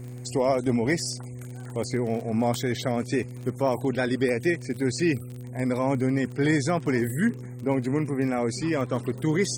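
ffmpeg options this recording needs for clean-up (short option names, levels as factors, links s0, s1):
-af "adeclick=t=4,bandreject=f=123.8:t=h:w=4,bandreject=f=247.6:t=h:w=4,bandreject=f=371.4:t=h:w=4,bandreject=f=495.2:t=h:w=4"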